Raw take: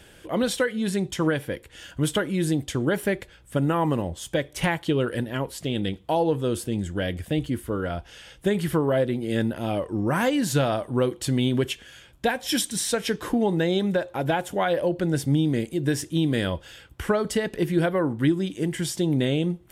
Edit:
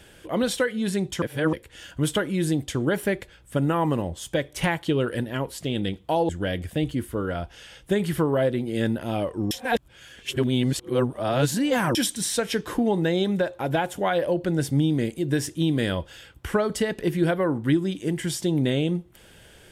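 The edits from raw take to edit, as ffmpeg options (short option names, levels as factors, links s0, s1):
-filter_complex "[0:a]asplit=6[s0][s1][s2][s3][s4][s5];[s0]atrim=end=1.222[s6];[s1]atrim=start=1.218:end=1.532,asetpts=PTS-STARTPTS,areverse[s7];[s2]atrim=start=1.528:end=6.292[s8];[s3]atrim=start=6.838:end=10.062[s9];[s4]atrim=start=10.058:end=12.502,asetpts=PTS-STARTPTS,areverse[s10];[s5]atrim=start=12.498[s11];[s6][s7]acrossfade=d=0.004:c1=hsin:c2=hsin[s12];[s12][s8]acrossfade=d=0.004:c1=hsin:c2=hsin[s13];[s13][s9]acrossfade=d=0.004:c1=hsin:c2=hsin[s14];[s14][s10]acrossfade=d=0.004:c1=hsin:c2=hsin[s15];[s15][s11]acrossfade=d=0.004:c1=hsin:c2=hsin"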